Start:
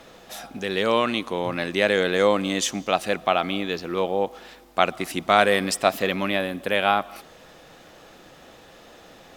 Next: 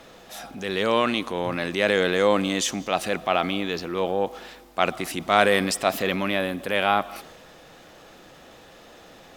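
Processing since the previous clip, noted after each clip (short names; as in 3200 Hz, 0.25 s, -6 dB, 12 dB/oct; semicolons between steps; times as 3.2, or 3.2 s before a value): transient shaper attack -4 dB, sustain +3 dB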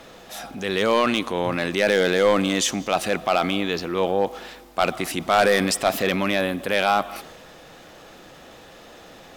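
hard clip -13.5 dBFS, distortion -13 dB; gain +3 dB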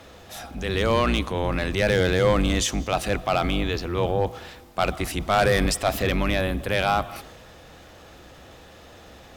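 octaver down 2 oct, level +3 dB; gain -2.5 dB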